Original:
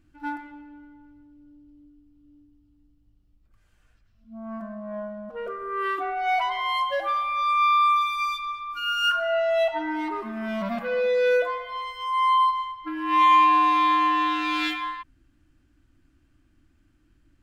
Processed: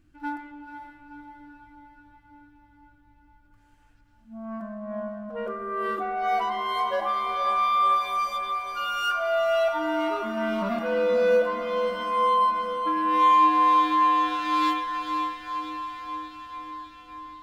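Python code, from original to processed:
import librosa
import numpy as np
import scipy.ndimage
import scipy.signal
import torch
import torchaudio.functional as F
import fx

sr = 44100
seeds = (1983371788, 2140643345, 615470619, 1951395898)

y = fx.dynamic_eq(x, sr, hz=2400.0, q=1.1, threshold_db=-39.0, ratio=4.0, max_db=-8)
y = fx.echo_diffused(y, sr, ms=501, feedback_pct=66, wet_db=-7)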